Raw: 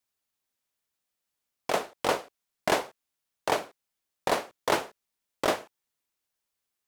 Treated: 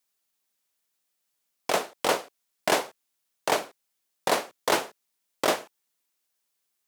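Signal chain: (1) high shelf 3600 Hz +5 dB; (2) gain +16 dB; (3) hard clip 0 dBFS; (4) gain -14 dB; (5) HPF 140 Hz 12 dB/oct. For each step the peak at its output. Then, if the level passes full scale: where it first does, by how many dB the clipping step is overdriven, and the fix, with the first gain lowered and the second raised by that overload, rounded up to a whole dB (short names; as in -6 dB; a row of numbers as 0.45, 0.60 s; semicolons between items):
-8.5, +7.5, 0.0, -14.0, -11.0 dBFS; step 2, 7.5 dB; step 2 +8 dB, step 4 -6 dB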